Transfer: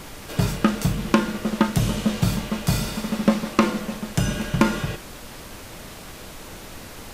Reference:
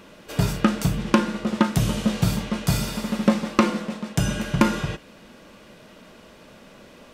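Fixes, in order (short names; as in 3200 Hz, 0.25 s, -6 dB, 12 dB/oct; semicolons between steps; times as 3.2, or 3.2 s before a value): noise print and reduce 9 dB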